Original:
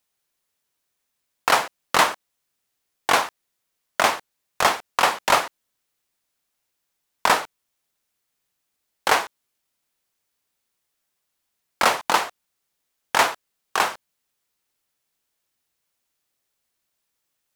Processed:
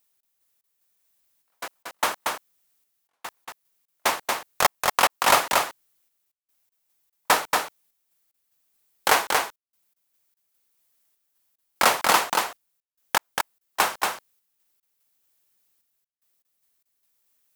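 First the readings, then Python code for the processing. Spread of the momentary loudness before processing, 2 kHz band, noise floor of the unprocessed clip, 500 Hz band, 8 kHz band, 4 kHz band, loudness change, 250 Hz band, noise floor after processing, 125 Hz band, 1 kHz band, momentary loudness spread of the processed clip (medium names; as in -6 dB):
13 LU, -2.0 dB, -78 dBFS, -2.0 dB, +2.0 dB, -1.0 dB, -1.5 dB, -2.5 dB, -82 dBFS, -2.5 dB, -2.0 dB, 19 LU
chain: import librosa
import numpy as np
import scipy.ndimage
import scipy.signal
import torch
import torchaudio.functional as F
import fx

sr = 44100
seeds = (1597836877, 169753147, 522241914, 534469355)

p1 = fx.high_shelf(x, sr, hz=10000.0, db=11.5)
p2 = fx.step_gate(p1, sr, bpm=74, pattern='x.x.xxx.x.xxxx..', floor_db=-60.0, edge_ms=4.5)
p3 = p2 + fx.echo_single(p2, sr, ms=232, db=-3.5, dry=0)
y = p3 * 10.0 ** (-1.0 / 20.0)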